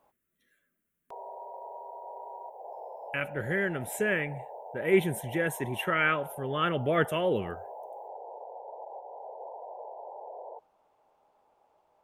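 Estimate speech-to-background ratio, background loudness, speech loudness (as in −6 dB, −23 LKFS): 14.0 dB, −43.5 LKFS, −29.5 LKFS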